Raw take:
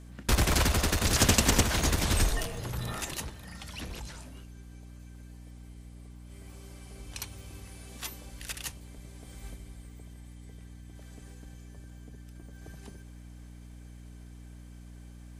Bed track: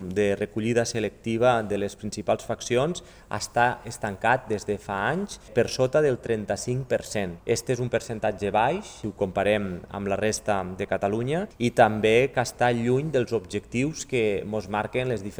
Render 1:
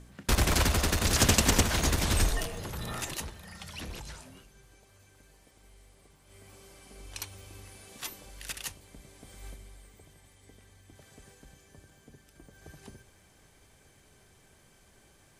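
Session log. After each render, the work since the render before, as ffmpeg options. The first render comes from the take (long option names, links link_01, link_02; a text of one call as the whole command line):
ffmpeg -i in.wav -af "bandreject=frequency=60:width_type=h:width=4,bandreject=frequency=120:width_type=h:width=4,bandreject=frequency=180:width_type=h:width=4,bandreject=frequency=240:width_type=h:width=4,bandreject=frequency=300:width_type=h:width=4" out.wav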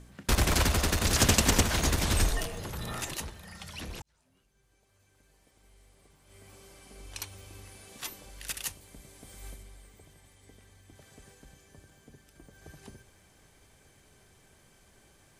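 ffmpeg -i in.wav -filter_complex "[0:a]asettb=1/sr,asplit=3[link_01][link_02][link_03];[link_01]atrim=end=8.484[link_04];[link_02]atrim=start=8.48:end=9.63,asetpts=PTS-STARTPTS,afade=type=in:duration=0.004:curve=qsin,afade=type=out:start_time=1.146:duration=0.004:curve=qsin,highshelf=frequency=8300:gain=6.5[link_05];[link_03]atrim=start=9.626[link_06];[link_04][link_05]acrossfade=duration=0.004:curve1=hsin:curve2=qsin[link_07];[link_07][link_06]acrossfade=duration=0.004:curve1=qsin:curve2=hsin,asplit=2[link_08][link_09];[link_08]atrim=end=4.02,asetpts=PTS-STARTPTS,afade=type=out:start_time=4.016:duration=0.004:curve=hsin[link_10];[link_09]atrim=start=4.02,asetpts=PTS-STARTPTS,afade=type=in:duration=2.46[link_11];[link_10][link_11]concat=n=2:v=0:a=1" out.wav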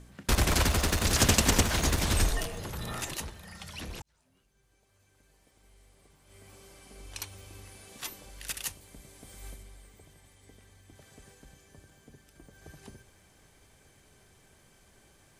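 ffmpeg -i in.wav -filter_complex "[0:a]asettb=1/sr,asplit=3[link_01][link_02][link_03];[link_01]atrim=end=0.654[link_04];[link_02]atrim=start=0.65:end=2.1,asetpts=PTS-STARTPTS,afade=type=in:duration=0.004:curve=qsin,afade=type=out:start_time=1.446:duration=0.004:curve=qsin,aeval=exprs='val(0)*gte(abs(val(0)),0.00562)':channel_layout=same[link_05];[link_03]atrim=start=2.096[link_06];[link_04][link_05]acrossfade=duration=0.004:curve1=hsin:curve2=qsin[link_07];[link_07][link_06]acrossfade=duration=0.004:curve1=qsin:curve2=hsin" out.wav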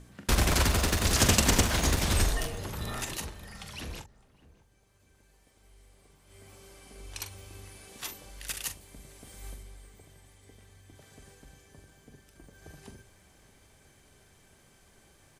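ffmpeg -i in.wav -filter_complex "[0:a]asplit=2[link_01][link_02];[link_02]adelay=43,volume=-10dB[link_03];[link_01][link_03]amix=inputs=2:normalize=0,asplit=2[link_04][link_05];[link_05]adelay=609,lowpass=frequency=960:poles=1,volume=-19dB,asplit=2[link_06][link_07];[link_07]adelay=609,lowpass=frequency=960:poles=1,volume=0.41,asplit=2[link_08][link_09];[link_09]adelay=609,lowpass=frequency=960:poles=1,volume=0.41[link_10];[link_04][link_06][link_08][link_10]amix=inputs=4:normalize=0" out.wav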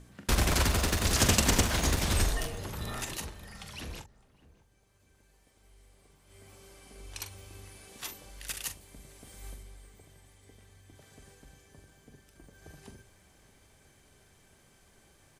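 ffmpeg -i in.wav -af "volume=-1.5dB" out.wav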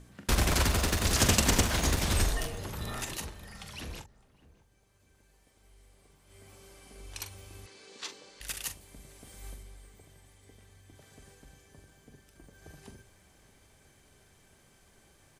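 ffmpeg -i in.wav -filter_complex "[0:a]asettb=1/sr,asplit=3[link_01][link_02][link_03];[link_01]atrim=end=7.664[link_04];[link_02]atrim=start=7.66:end=8.41,asetpts=PTS-STARTPTS,afade=type=in:duration=0.004:curve=qsin,afade=type=out:start_time=0.746:duration=0.004:curve=qsin,highpass=250,equalizer=frequency=450:width_type=q:width=4:gain=6,equalizer=frequency=690:width_type=q:width=4:gain=-6,equalizer=frequency=4300:width_type=q:width=4:gain=6,lowpass=frequency=7400:width=0.5412,lowpass=frequency=7400:width=1.3066[link_05];[link_03]atrim=start=8.406[link_06];[link_04][link_05]acrossfade=duration=0.004:curve1=hsin:curve2=qsin[link_07];[link_07][link_06]acrossfade=duration=0.004:curve1=qsin:curve2=hsin" out.wav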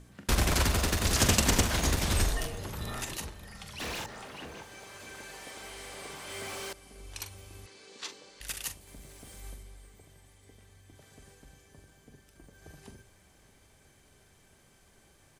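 ffmpeg -i in.wav -filter_complex "[0:a]asettb=1/sr,asplit=3[link_01][link_02][link_03];[link_01]atrim=end=3.804[link_04];[link_02]atrim=start=3.8:end=6.73,asetpts=PTS-STARTPTS,afade=type=in:duration=0.004:curve=qsin,afade=type=out:start_time=2.926:duration=0.004:curve=qsin,asplit=2[link_05][link_06];[link_06]highpass=frequency=720:poles=1,volume=34dB,asoftclip=type=tanh:threshold=-29dB[link_07];[link_05][link_07]amix=inputs=2:normalize=0,lowpass=frequency=4500:poles=1,volume=-6dB[link_08];[link_03]atrim=start=6.726[link_09];[link_04][link_08]acrossfade=duration=0.004:curve1=hsin:curve2=qsin[link_10];[link_10][link_09]acrossfade=duration=0.004:curve1=qsin:curve2=hsin,asettb=1/sr,asplit=3[link_11][link_12][link_13];[link_11]atrim=end=8.874[link_14];[link_12]atrim=start=8.87:end=9.41,asetpts=PTS-STARTPTS,afade=type=in:duration=0.004:curve=qsin,afade=type=out:start_time=0.536:duration=0.004:curve=qsin,aeval=exprs='val(0)+0.5*0.00168*sgn(val(0))':channel_layout=same[link_15];[link_13]atrim=start=9.406[link_16];[link_14][link_15]acrossfade=duration=0.004:curve1=hsin:curve2=qsin[link_17];[link_17][link_16]acrossfade=duration=0.004:curve1=qsin:curve2=hsin" out.wav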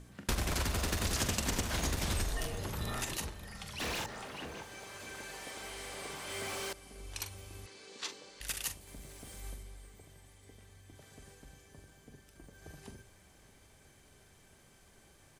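ffmpeg -i in.wav -af "acompressor=threshold=-30dB:ratio=6" out.wav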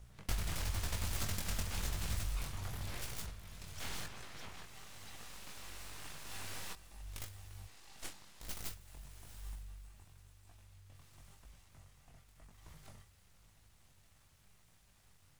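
ffmpeg -i in.wav -filter_complex "[0:a]flanger=delay=18:depth=5.2:speed=0.95,acrossover=split=190[link_01][link_02];[link_02]aeval=exprs='abs(val(0))':channel_layout=same[link_03];[link_01][link_03]amix=inputs=2:normalize=0" out.wav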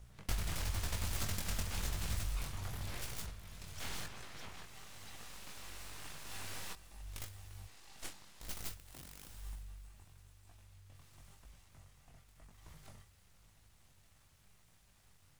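ffmpeg -i in.wav -filter_complex "[0:a]asettb=1/sr,asplit=3[link_01][link_02][link_03];[link_01]atrim=end=8.794[link_04];[link_02]atrim=start=8.79:end=9.29,asetpts=PTS-STARTPTS,afade=type=in:duration=0.004:curve=qsin,afade=type=out:start_time=0.496:duration=0.004:curve=qsin,aeval=exprs='(mod(224*val(0)+1,2)-1)/224':channel_layout=same[link_05];[link_03]atrim=start=9.286[link_06];[link_04][link_05]acrossfade=duration=0.004:curve1=hsin:curve2=qsin[link_07];[link_07][link_06]acrossfade=duration=0.004:curve1=qsin:curve2=hsin" out.wav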